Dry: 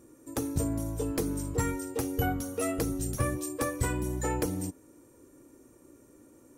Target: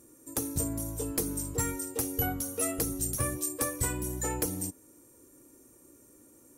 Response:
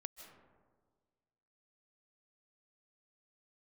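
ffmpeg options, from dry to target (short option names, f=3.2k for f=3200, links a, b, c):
-af "equalizer=f=13k:w=0.33:g=12.5,volume=-3.5dB"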